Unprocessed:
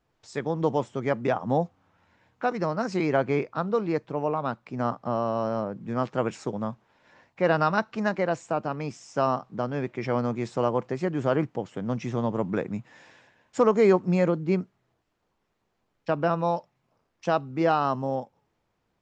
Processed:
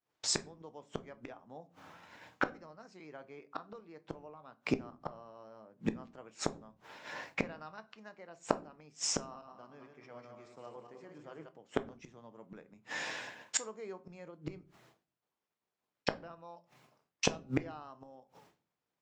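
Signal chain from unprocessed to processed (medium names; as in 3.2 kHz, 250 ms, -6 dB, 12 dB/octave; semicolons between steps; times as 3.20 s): 9.21–11.49 s: backward echo that repeats 104 ms, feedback 59%, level -4 dB; expander -59 dBFS; high-pass 280 Hz 6 dB/octave; treble shelf 2.4 kHz +4.5 dB; inverted gate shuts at -28 dBFS, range -37 dB; reverberation RT60 0.35 s, pre-delay 7 ms, DRR 11.5 dB; trim +12 dB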